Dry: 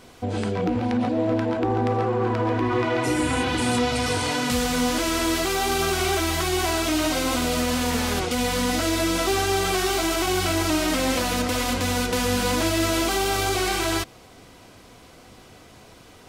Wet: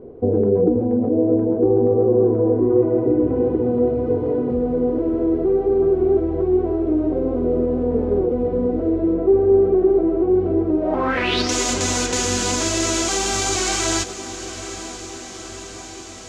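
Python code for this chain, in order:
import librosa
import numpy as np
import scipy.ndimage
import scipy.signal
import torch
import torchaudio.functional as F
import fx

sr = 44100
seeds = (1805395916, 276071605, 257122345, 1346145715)

y = fx.high_shelf(x, sr, hz=4400.0, db=-10.5, at=(9.15, 10.34))
y = fx.rider(y, sr, range_db=5, speed_s=0.5)
y = fx.filter_sweep_lowpass(y, sr, from_hz=430.0, to_hz=6900.0, start_s=10.78, end_s=11.53, q=4.7)
y = fx.echo_diffused(y, sr, ms=922, feedback_pct=67, wet_db=-13.0)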